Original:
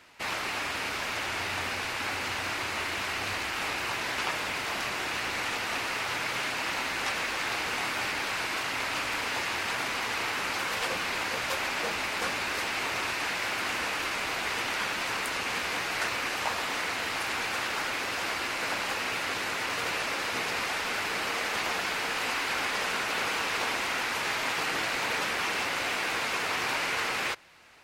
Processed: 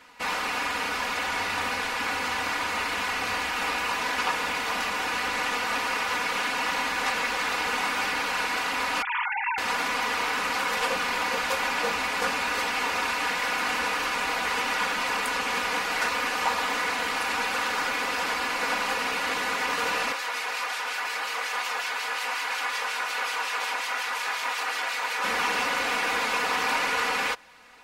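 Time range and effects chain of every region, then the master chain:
9.02–9.58 s: formants replaced by sine waves + resonant low shelf 500 Hz +9.5 dB, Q 1.5
20.12–25.24 s: Bessel high-pass 700 Hz + harmonic tremolo 5.5 Hz, depth 50%, crossover 2.1 kHz
whole clip: peaking EQ 880 Hz +5.5 dB 1.4 oct; band-stop 710 Hz, Q 12; comb 4.1 ms, depth 74%

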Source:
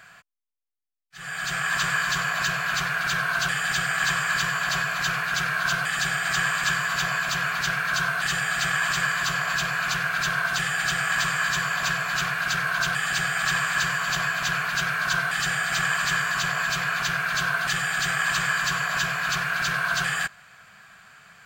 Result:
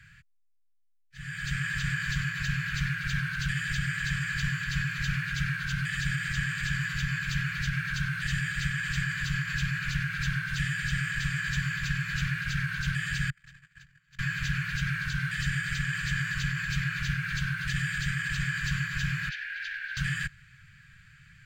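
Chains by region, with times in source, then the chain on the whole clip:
13.30–14.19 s: gate -22 dBFS, range -37 dB + compression 5:1, threshold -44 dBFS
19.29–19.97 s: elliptic high-pass 1.6 kHz, stop band 50 dB + distance through air 200 m + short-mantissa float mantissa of 4-bit
whole clip: peak limiter -16.5 dBFS; elliptic band-stop 140–1800 Hz, stop band 70 dB; tilt EQ -3.5 dB/octave

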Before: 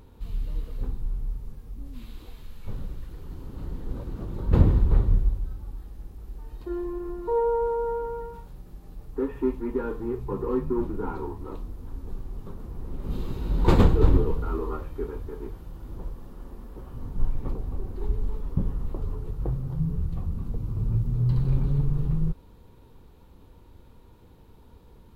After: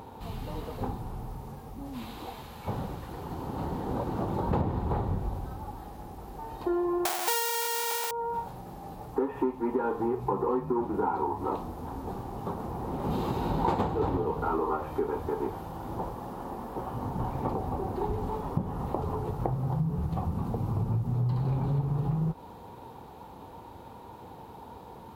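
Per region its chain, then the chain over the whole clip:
7.05–8.11 s: square wave that keeps the level + tilt EQ +4.5 dB/octave
whole clip: high-pass 110 Hz 12 dB/octave; peaking EQ 810 Hz +14.5 dB 0.81 oct; compression 6:1, threshold -32 dBFS; trim +6.5 dB

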